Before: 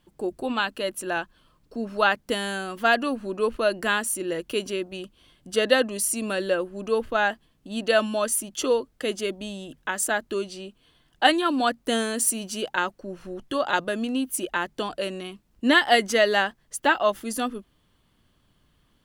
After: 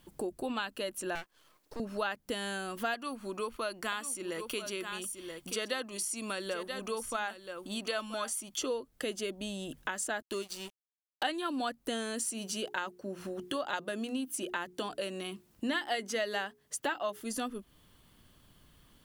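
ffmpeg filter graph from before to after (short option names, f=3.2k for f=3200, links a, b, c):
-filter_complex "[0:a]asettb=1/sr,asplit=3[a][b][c];[a]atrim=end=1.154[d];[b]atrim=start=1.15:end=1.8,asetpts=PTS-STARTPTS,afade=t=in:d=0.004:c=qsin,afade=t=out:st=0.646:d=0.004:c=qsin,highpass=f=310:w=0.5412,highpass=f=310:w=1.3066,aeval=exprs='max(val(0),0)':c=same[e];[c]atrim=start=1.796[f];[d][e]acrossfade=d=0.004:c1=hsin:c2=qsin[g];[g][f]acrossfade=d=0.004:c1=qsin:c2=hsin,asettb=1/sr,asplit=3[h][i][j];[h]atrim=end=2.944[k];[i]atrim=start=2.94:end=8.58,asetpts=PTS-STARTPTS,afade=t=in:d=0.004:c=qsin,afade=t=out:st=5.636:d=0.004:c=qsin,lowshelf=f=330:g=-10,aecho=1:1:0.9:0.34,atrim=end_sample=248724,aecho=1:1:980:0.237,atrim=end_sample=248724[l];[j]atrim=start=8.576[m];[k][l]acrossfade=d=0.004:c1=hsin:c2=qsin[n];[n][m]acrossfade=d=0.004:c1=qsin:c2=hsin,asettb=1/sr,asplit=3[o][p][q];[o]atrim=end=10.224[r];[p]atrim=start=10.22:end=11.23,asetpts=PTS-STARTPTS,afade=t=in:d=0.004:c=qsin,afade=t=out:st=1.006:d=0.004:c=qsin,highshelf=f=3.3k:g=7.5,aeval=exprs='sgn(val(0))*max(abs(val(0))-0.01,0)':c=same[s];[q]atrim=start=11.226[t];[r][s]acrossfade=d=0.004:c1=hsin:c2=qsin[u];[u][t]acrossfade=d=0.004:c1=qsin:c2=hsin,asettb=1/sr,asplit=3[v][w][x];[v]atrim=end=12.284[y];[w]atrim=start=12.28:end=17.21,asetpts=PTS-STARTPTS,afade=t=in:d=0.004:c=qsin,afade=t=out:st=4.926:d=0.004:c=qsin,highpass=84,bandreject=f=60:t=h:w=6,bandreject=f=120:t=h:w=6,bandreject=f=180:t=h:w=6,bandreject=f=240:t=h:w=6,bandreject=f=300:t=h:w=6,bandreject=f=360:t=h:w=6,bandreject=f=420:t=h:w=6[z];[x]atrim=start=17.206[aa];[y][z]acrossfade=d=0.004:c1=hsin:c2=qsin[ab];[ab][aa]acrossfade=d=0.004:c1=qsin:c2=hsin,acrossover=split=8000[ac][ad];[ad]acompressor=threshold=-46dB:ratio=4:attack=1:release=60[ae];[ac][ae]amix=inputs=2:normalize=0,highshelf=f=8.1k:g=9.5,acompressor=threshold=-39dB:ratio=3,volume=2.5dB"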